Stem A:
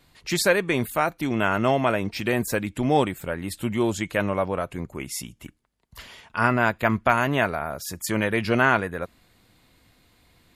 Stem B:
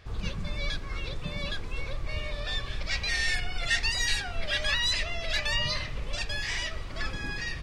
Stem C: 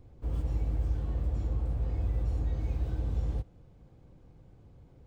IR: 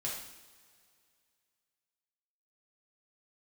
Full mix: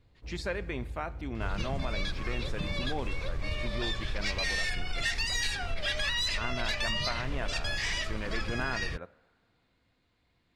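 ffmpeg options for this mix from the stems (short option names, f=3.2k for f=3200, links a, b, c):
-filter_complex "[0:a]lowpass=4.7k,volume=-14dB,asplit=2[a][b];[b]volume=-16dB[c];[1:a]asoftclip=type=tanh:threshold=-18.5dB,adelay=1350,volume=2dB[d];[2:a]volume=-10.5dB[e];[3:a]atrim=start_sample=2205[f];[c][f]afir=irnorm=-1:irlink=0[g];[a][d][e][g]amix=inputs=4:normalize=0,acompressor=threshold=-27dB:ratio=6"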